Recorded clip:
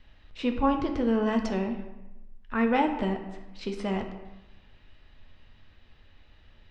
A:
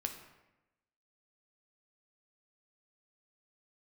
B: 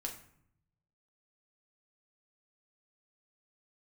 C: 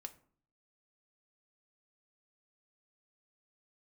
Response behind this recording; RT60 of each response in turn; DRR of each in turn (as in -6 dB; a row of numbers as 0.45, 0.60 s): A; 0.95, 0.65, 0.50 s; 4.0, 0.5, 6.5 dB